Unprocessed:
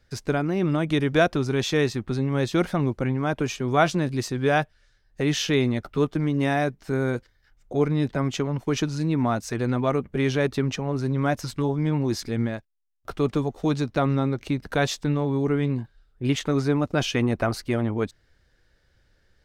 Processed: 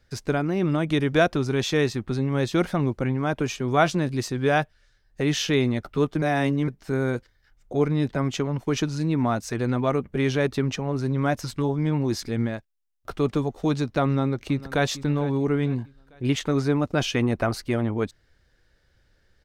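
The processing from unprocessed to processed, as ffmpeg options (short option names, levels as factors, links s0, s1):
-filter_complex "[0:a]asplit=2[s0][s1];[s1]afade=t=in:st=14.04:d=0.01,afade=t=out:st=14.86:d=0.01,aecho=0:1:450|900|1350|1800:0.141254|0.0635642|0.0286039|0.0128717[s2];[s0][s2]amix=inputs=2:normalize=0,asplit=3[s3][s4][s5];[s3]atrim=end=6.222[s6];[s4]atrim=start=6.218:end=6.682,asetpts=PTS-STARTPTS,areverse[s7];[s5]atrim=start=6.678[s8];[s6][s7]acrossfade=d=0.004:c1=hsin:c2=hsin[s9];[s9][s8]acrossfade=d=0.004:c1=hsin:c2=hsin"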